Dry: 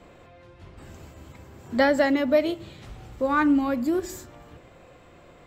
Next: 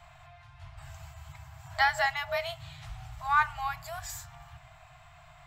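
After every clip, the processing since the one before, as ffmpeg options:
ffmpeg -i in.wav -af "afftfilt=real='re*(1-between(b*sr/4096,160,620))':imag='im*(1-between(b*sr/4096,160,620))':win_size=4096:overlap=0.75" out.wav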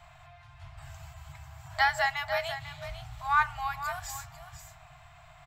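ffmpeg -i in.wav -af "aecho=1:1:496:0.282" out.wav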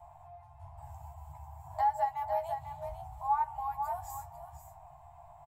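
ffmpeg -i in.wav -filter_complex "[0:a]firequalizer=gain_entry='entry(120,0);entry(190,-14);entry(870,12);entry(1300,-14);entry(3800,-20);entry(9500,-1)':delay=0.05:min_phase=1,acompressor=threshold=-29dB:ratio=2,asplit=2[link_01][link_02];[link_02]adelay=13,volume=-5.5dB[link_03];[link_01][link_03]amix=inputs=2:normalize=0,volume=-3.5dB" out.wav

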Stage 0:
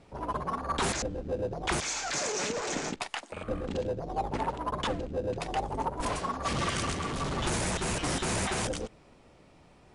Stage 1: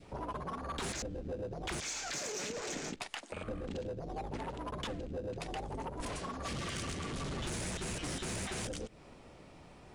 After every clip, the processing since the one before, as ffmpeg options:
ffmpeg -i in.wav -af "asoftclip=type=tanh:threshold=-24dB,adynamicequalizer=threshold=0.00447:dfrequency=950:dqfactor=1.1:tfrequency=950:tqfactor=1.1:attack=5:release=100:ratio=0.375:range=3:mode=cutabove:tftype=bell,acompressor=threshold=-42dB:ratio=3,volume=2.5dB" out.wav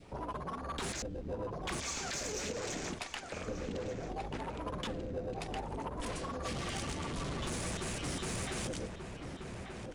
ffmpeg -i in.wav -filter_complex "[0:a]asplit=2[link_01][link_02];[link_02]adelay=1185,lowpass=frequency=1900:poles=1,volume=-5dB,asplit=2[link_03][link_04];[link_04]adelay=1185,lowpass=frequency=1900:poles=1,volume=0.32,asplit=2[link_05][link_06];[link_06]adelay=1185,lowpass=frequency=1900:poles=1,volume=0.32,asplit=2[link_07][link_08];[link_08]adelay=1185,lowpass=frequency=1900:poles=1,volume=0.32[link_09];[link_01][link_03][link_05][link_07][link_09]amix=inputs=5:normalize=0" out.wav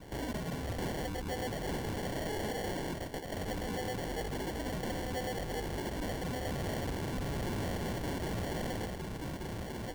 ffmpeg -i in.wav -af "acrusher=samples=35:mix=1:aa=0.000001,asoftclip=type=tanh:threshold=-38dB,volume=6dB" out.wav

